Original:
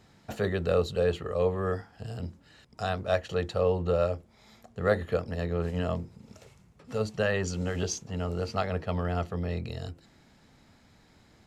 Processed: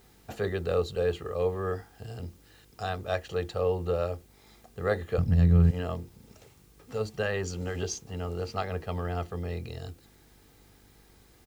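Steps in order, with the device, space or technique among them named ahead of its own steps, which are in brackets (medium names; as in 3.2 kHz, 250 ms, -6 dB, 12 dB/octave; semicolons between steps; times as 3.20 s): video cassette with head-switching buzz (mains buzz 50 Hz, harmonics 10, -60 dBFS -4 dB/octave; white noise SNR 32 dB); 5.18–5.71 s: resonant low shelf 260 Hz +14 dB, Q 1.5; comb 2.5 ms, depth 30%; trim -2.5 dB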